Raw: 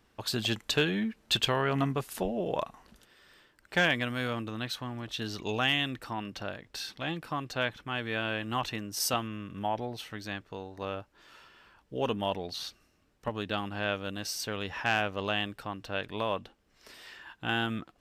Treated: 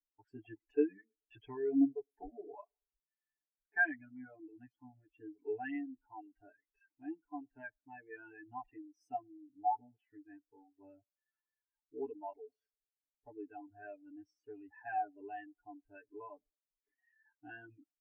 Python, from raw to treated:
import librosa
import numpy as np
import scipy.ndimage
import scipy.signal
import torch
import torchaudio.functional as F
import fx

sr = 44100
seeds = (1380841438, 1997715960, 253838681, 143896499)

y = fx.lowpass(x, sr, hz=2200.0, slope=6)
y = y + 0.91 * np.pad(y, (int(6.9 * sr / 1000.0), 0))[:len(y)]
y = fx.dereverb_blind(y, sr, rt60_s=1.0)
y = fx.fixed_phaser(y, sr, hz=800.0, stages=8)
y = fx.power_curve(y, sr, exponent=0.7)
y = fx.echo_banded(y, sr, ms=108, feedback_pct=68, hz=470.0, wet_db=-20.0)
y = fx.spectral_expand(y, sr, expansion=2.5)
y = y * 10.0 ** (-5.0 / 20.0)